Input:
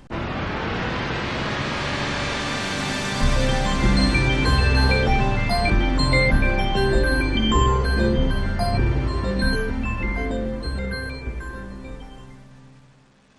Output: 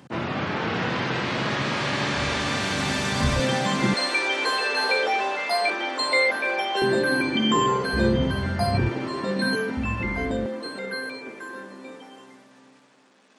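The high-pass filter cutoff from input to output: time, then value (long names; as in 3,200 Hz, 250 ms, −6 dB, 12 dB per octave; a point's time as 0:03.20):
high-pass filter 24 dB per octave
110 Hz
from 0:02.16 54 Hz
from 0:03.40 140 Hz
from 0:03.94 410 Hz
from 0:06.82 160 Hz
from 0:07.93 74 Hz
from 0:08.89 180 Hz
from 0:09.77 64 Hz
from 0:10.46 250 Hz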